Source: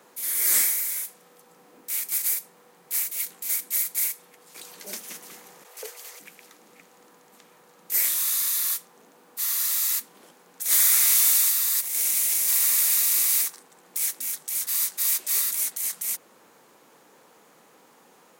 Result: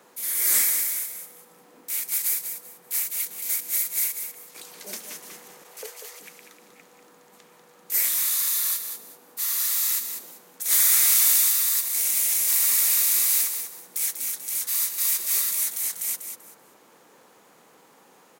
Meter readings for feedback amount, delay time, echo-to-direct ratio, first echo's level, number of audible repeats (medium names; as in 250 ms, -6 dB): 23%, 193 ms, -8.0 dB, -8.0 dB, 3